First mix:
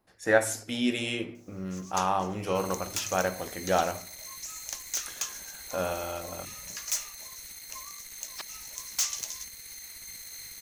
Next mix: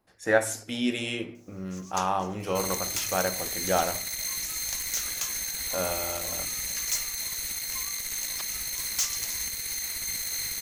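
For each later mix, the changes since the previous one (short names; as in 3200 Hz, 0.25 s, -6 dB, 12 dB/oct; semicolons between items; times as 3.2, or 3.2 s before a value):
second sound +11.5 dB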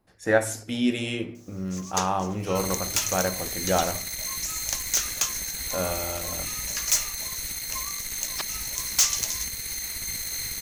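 first sound +7.5 dB; master: add low shelf 290 Hz +7 dB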